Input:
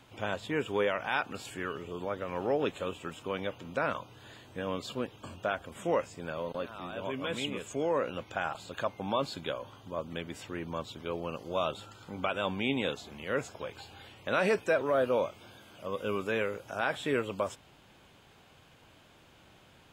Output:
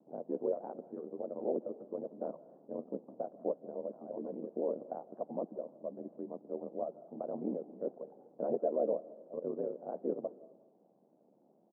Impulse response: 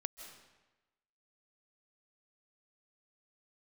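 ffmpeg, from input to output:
-filter_complex "[0:a]aeval=exprs='val(0)*sin(2*PI*40*n/s)':c=same,atempo=1.7,asuperpass=centerf=370:order=8:qfactor=0.69,asplit=2[a][b];[1:a]atrim=start_sample=2205[c];[b][c]afir=irnorm=-1:irlink=0,volume=-6dB[d];[a][d]amix=inputs=2:normalize=0,volume=-3dB"

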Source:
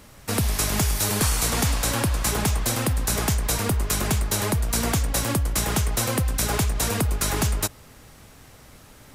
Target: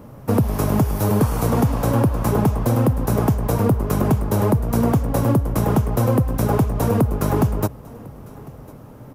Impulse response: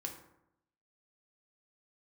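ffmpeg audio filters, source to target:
-filter_complex "[0:a]equalizer=f=125:t=o:w=1:g=12,equalizer=f=250:t=o:w=1:g=8,equalizer=f=500:t=o:w=1:g=8,equalizer=f=1k:t=o:w=1:g=6,equalizer=f=2k:t=o:w=1:g=-6,equalizer=f=4k:t=o:w=1:g=-9,equalizer=f=8k:t=o:w=1:g=-11,acompressor=threshold=-13dB:ratio=6,asplit=2[a][b];[b]aecho=0:1:1051:0.075[c];[a][c]amix=inputs=2:normalize=0"

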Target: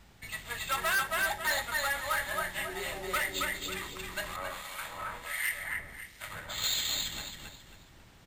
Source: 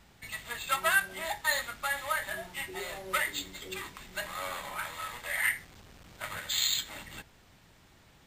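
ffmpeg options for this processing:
-filter_complex "[0:a]lowshelf=f=75:g=6,aecho=1:1:272|544|816|1088:0.668|0.207|0.0642|0.0199,asettb=1/sr,asplit=3[a][b][c];[a]atrim=end=4.364[d];[b]atrim=start=4.36:end=6.64,asetpts=PTS-STARTPTS,afade=t=in:d=0.004:c=qsin,afade=t=out:st=2.276:d=0.004:c=qsin,acrossover=split=1900[e][f];[e]aeval=exprs='val(0)*(1-0.7/2+0.7/2*cos(2*PI*1.4*n/s))':c=same[g];[f]aeval=exprs='val(0)*(1-0.7/2-0.7/2*cos(2*PI*1.4*n/s))':c=same[h];[g][h]amix=inputs=2:normalize=0[i];[c]atrim=start=6.636[j];[d][i]acrossfade=d=0.004:c1=hsin:c2=qsin[k];[k][j]acrossfade=d=0.004:c1=qsin:c2=hsin,volume=25dB,asoftclip=hard,volume=-25dB"

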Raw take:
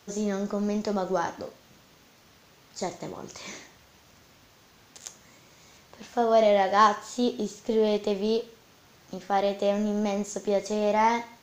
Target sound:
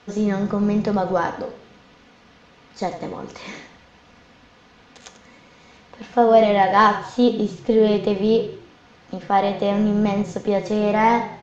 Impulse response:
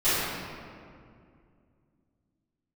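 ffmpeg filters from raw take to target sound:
-filter_complex "[0:a]lowpass=3.4k,aecho=1:1:4.1:0.41,asplit=5[a][b][c][d][e];[b]adelay=92,afreqshift=-36,volume=-13dB[f];[c]adelay=184,afreqshift=-72,volume=-21.9dB[g];[d]adelay=276,afreqshift=-108,volume=-30.7dB[h];[e]adelay=368,afreqshift=-144,volume=-39.6dB[i];[a][f][g][h][i]amix=inputs=5:normalize=0,volume=6.5dB"

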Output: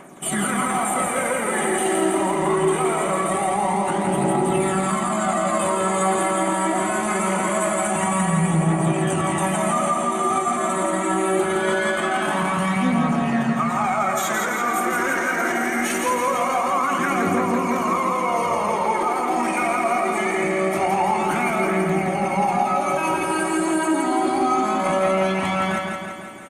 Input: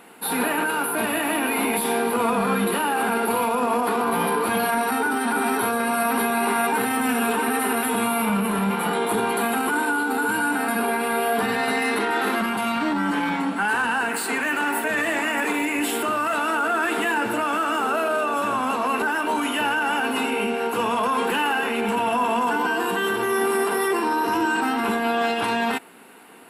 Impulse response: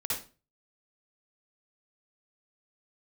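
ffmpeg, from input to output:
-filter_complex "[0:a]aphaser=in_gain=1:out_gain=1:delay=2.7:decay=0.53:speed=0.23:type=triangular,asplit=2[a][b];[b]adelay=99,lowpass=f=2k:p=1,volume=-10dB,asplit=2[c][d];[d]adelay=99,lowpass=f=2k:p=1,volume=0.33,asplit=2[e][f];[f]adelay=99,lowpass=f=2k:p=1,volume=0.33,asplit=2[g][h];[h]adelay=99,lowpass=f=2k:p=1,volume=0.33[i];[c][e][g][i]amix=inputs=4:normalize=0[j];[a][j]amix=inputs=2:normalize=0,alimiter=limit=-13dB:level=0:latency=1:release=357,asetrate=36028,aresample=44100,atempo=1.22405,asplit=2[k][l];[l]aecho=0:1:168|336|504|672|840|1008|1176|1344|1512:0.631|0.379|0.227|0.136|0.0818|0.0491|0.0294|0.0177|0.0106[m];[k][m]amix=inputs=2:normalize=0"

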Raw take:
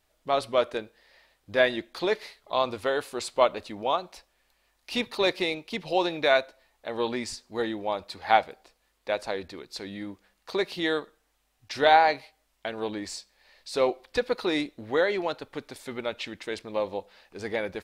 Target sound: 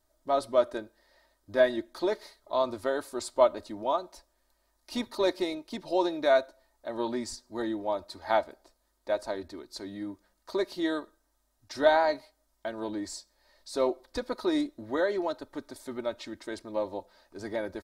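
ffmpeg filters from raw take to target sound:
-af "equalizer=f=2.6k:w=1.6:g=-14,aecho=1:1:3.2:0.62,volume=-2.5dB"

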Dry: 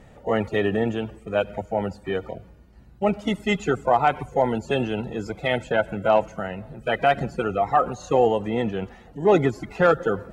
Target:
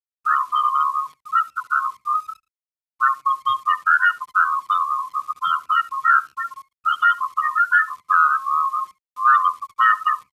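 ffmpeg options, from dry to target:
-filter_complex "[0:a]afftfilt=real='real(if(lt(b,272),68*(eq(floor(b/68),0)*2+eq(floor(b/68),1)*0+eq(floor(b/68),2)*3+eq(floor(b/68),3)*1)+mod(b,68),b),0)':imag='imag(if(lt(b,272),68*(eq(floor(b/68),0)*2+eq(floor(b/68),1)*0+eq(floor(b/68),2)*3+eq(floor(b/68),3)*1)+mod(b,68),b),0)':win_size=2048:overlap=0.75,afftfilt=real='re*gte(hypot(re,im),0.2)':imag='im*gte(hypot(re,im),0.2)':win_size=1024:overlap=0.75,asplit=2[a][b];[b]acompressor=threshold=-25dB:ratio=12,volume=1dB[c];[a][c]amix=inputs=2:normalize=0,lowshelf=f=480:g=-11,aexciter=amount=1.4:drive=7.6:freq=2.5k,asplit=2[d][e];[e]adelay=69,lowpass=f=1.6k:p=1,volume=-18dB,asplit=2[f][g];[g]adelay=69,lowpass=f=1.6k:p=1,volume=0.19[h];[f][h]amix=inputs=2:normalize=0[i];[d][i]amix=inputs=2:normalize=0,acrossover=split=2500[j][k];[k]acompressor=threshold=-26dB:ratio=4:attack=1:release=60[l];[j][l]amix=inputs=2:normalize=0,lowpass=3.8k,equalizer=f=360:w=1.6:g=-13,acrusher=bits=9:dc=4:mix=0:aa=0.000001,asetrate=28595,aresample=44100,atempo=1.54221,highpass=82,volume=2dB"

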